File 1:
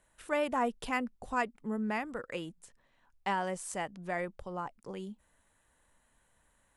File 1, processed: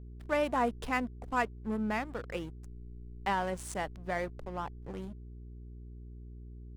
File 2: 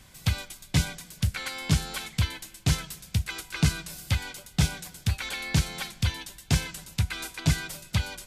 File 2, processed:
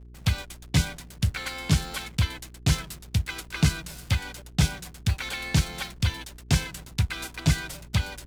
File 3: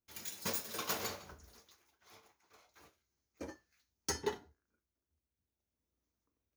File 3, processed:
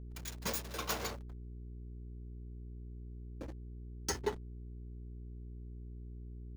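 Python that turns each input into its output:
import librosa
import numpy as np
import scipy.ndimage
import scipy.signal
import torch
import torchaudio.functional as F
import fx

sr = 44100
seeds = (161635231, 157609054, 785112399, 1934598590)

y = fx.backlash(x, sr, play_db=-39.0)
y = fx.dmg_buzz(y, sr, base_hz=60.0, harmonics=7, level_db=-48.0, tilt_db=-8, odd_only=False)
y = F.gain(torch.from_numpy(y), 1.5).numpy()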